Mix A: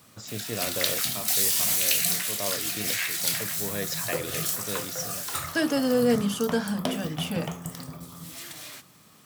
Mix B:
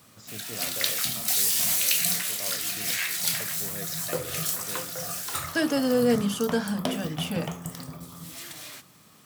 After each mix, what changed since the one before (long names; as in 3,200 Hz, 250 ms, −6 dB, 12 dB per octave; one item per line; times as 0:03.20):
first voice −8.0 dB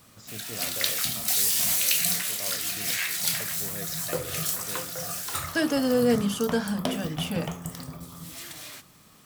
master: remove high-pass filter 86 Hz